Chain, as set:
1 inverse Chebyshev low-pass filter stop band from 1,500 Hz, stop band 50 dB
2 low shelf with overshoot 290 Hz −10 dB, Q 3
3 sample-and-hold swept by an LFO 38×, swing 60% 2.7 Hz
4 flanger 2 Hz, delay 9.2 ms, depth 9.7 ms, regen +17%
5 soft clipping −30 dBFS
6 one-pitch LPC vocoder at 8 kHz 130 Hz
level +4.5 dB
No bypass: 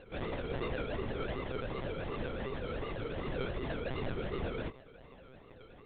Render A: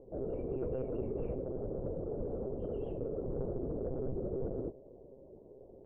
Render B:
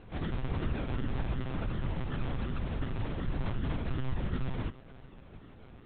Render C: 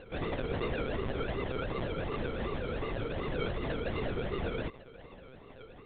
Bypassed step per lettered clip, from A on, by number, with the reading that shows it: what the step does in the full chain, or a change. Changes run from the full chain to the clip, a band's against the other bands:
3, 1 kHz band −11.0 dB
2, 125 Hz band +9.0 dB
4, change in integrated loudness +3.0 LU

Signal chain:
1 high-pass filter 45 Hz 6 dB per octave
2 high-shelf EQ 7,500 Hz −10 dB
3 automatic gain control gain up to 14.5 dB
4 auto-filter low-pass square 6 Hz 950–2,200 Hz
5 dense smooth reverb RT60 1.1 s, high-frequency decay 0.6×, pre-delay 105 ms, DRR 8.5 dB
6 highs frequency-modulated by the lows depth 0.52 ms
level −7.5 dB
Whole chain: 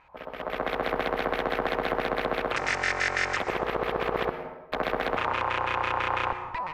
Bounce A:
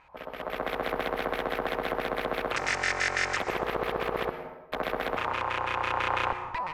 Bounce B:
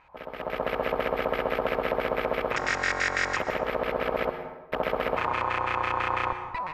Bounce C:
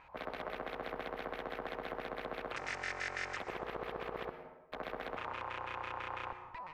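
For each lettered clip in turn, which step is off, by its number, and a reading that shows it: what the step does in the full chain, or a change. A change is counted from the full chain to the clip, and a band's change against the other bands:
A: 2, 8 kHz band +4.5 dB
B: 6, 500 Hz band +1.5 dB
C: 3, change in integrated loudness −13.5 LU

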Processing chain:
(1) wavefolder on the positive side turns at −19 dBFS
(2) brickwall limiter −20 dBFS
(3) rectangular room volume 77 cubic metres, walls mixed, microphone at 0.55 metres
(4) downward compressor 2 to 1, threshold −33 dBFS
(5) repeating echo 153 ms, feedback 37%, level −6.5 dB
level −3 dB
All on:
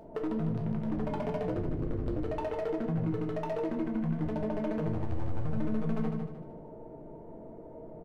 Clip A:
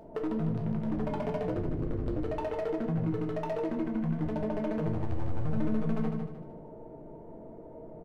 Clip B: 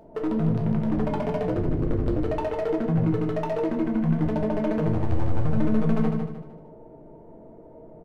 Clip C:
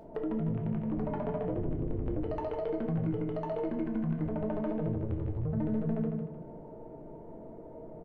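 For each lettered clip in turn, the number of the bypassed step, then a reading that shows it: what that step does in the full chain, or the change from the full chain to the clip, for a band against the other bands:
2, change in momentary loudness spread +1 LU
4, average gain reduction 6.0 dB
1, distortion level −11 dB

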